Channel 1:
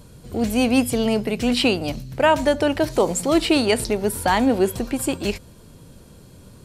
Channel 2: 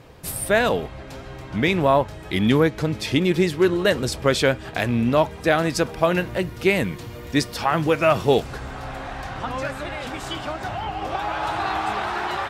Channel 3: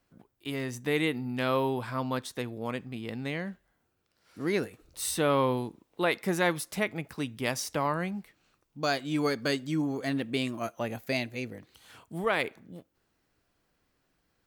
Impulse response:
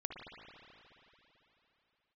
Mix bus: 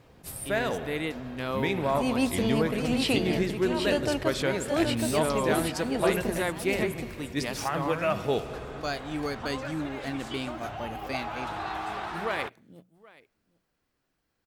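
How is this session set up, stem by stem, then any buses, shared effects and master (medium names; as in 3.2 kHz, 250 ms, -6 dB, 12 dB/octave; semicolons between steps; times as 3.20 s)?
-8.0 dB, 1.45 s, no send, echo send -5 dB, slow attack 385 ms
-12.5 dB, 0.00 s, send -4.5 dB, no echo send, none
-4.0 dB, 0.00 s, no send, echo send -22.5 dB, hum notches 60/120/180 Hz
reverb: on, RT60 3.4 s, pre-delay 54 ms
echo: delay 774 ms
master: attacks held to a fixed rise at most 310 dB/s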